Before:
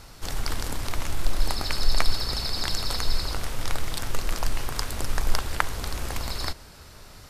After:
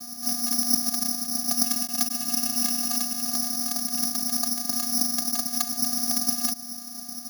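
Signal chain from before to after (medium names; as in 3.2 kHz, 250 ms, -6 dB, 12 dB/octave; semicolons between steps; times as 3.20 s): local Wiener filter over 15 samples; in parallel at +1.5 dB: compression, threshold -32 dBFS, peak gain reduction 19.5 dB; on the sum: overload inside the chain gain 10.5 dB; vocoder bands 8, square 240 Hz; careless resampling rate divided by 8×, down filtered, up zero stuff; trim -1.5 dB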